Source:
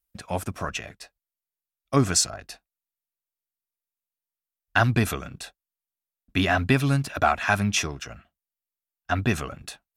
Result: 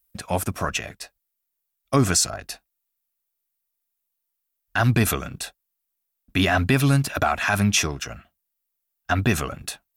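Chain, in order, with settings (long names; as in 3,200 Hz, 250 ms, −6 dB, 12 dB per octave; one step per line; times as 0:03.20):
high-shelf EQ 11,000 Hz +11 dB
brickwall limiter −13.5 dBFS, peak gain reduction 9 dB
level +4.5 dB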